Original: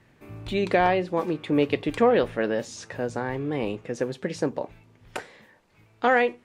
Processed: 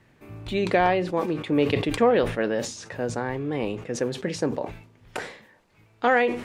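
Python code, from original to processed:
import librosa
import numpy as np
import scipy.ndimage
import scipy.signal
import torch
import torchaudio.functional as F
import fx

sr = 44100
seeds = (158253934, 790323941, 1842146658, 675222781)

y = fx.sustainer(x, sr, db_per_s=95.0)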